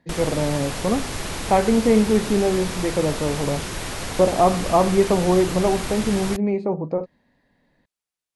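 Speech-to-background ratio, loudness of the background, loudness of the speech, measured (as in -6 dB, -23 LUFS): 8.5 dB, -29.5 LUFS, -21.0 LUFS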